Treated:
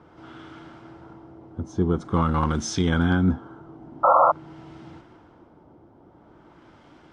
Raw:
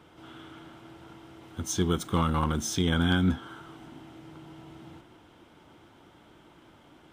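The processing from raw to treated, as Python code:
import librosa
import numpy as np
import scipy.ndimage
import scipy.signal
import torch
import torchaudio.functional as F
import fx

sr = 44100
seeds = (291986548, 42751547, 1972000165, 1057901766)

y = fx.band_shelf(x, sr, hz=7200.0, db=15.5, octaves=1.7)
y = fx.filter_lfo_lowpass(y, sr, shape='sine', hz=0.47, low_hz=720.0, high_hz=2300.0, q=0.84)
y = fx.spec_paint(y, sr, seeds[0], shape='noise', start_s=4.03, length_s=0.29, low_hz=500.0, high_hz=1400.0, level_db=-20.0)
y = y * librosa.db_to_amplitude(4.0)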